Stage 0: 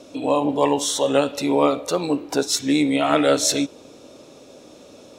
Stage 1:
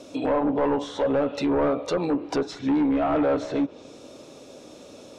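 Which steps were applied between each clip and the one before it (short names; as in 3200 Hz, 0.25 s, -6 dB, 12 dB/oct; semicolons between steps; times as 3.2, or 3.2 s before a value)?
overloaded stage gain 18.5 dB; treble ducked by the level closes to 1300 Hz, closed at -19.5 dBFS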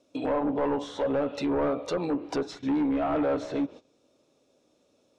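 gate -38 dBFS, range -18 dB; gain -4 dB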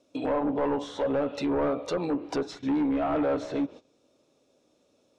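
nothing audible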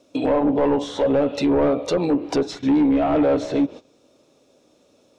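dynamic EQ 1300 Hz, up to -6 dB, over -45 dBFS, Q 1.2; gain +9 dB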